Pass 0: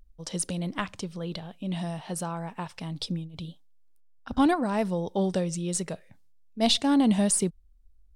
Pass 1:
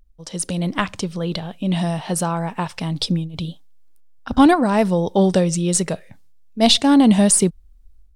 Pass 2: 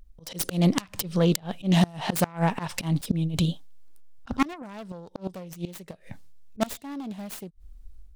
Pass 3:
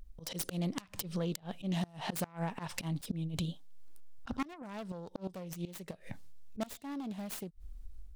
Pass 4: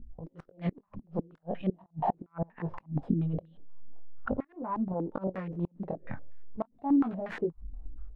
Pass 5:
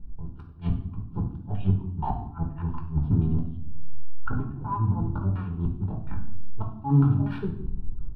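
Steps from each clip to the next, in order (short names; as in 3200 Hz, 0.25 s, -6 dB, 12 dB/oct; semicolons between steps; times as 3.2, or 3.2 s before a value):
AGC gain up to 10 dB; gain +1 dB
self-modulated delay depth 0.41 ms; auto swell 0.157 s; flipped gate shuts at -12 dBFS, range -26 dB; gain +3.5 dB
compressor 2.5:1, threshold -39 dBFS, peak gain reduction 15.5 dB
chorus 0.42 Hz, delay 17 ms, depth 7.9 ms; flipped gate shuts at -29 dBFS, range -29 dB; stepped low-pass 8.4 Hz 240–1800 Hz; gain +8.5 dB
octaver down 1 oct, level +3 dB; fixed phaser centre 2000 Hz, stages 6; reverb RT60 0.70 s, pre-delay 7 ms, DRR 2 dB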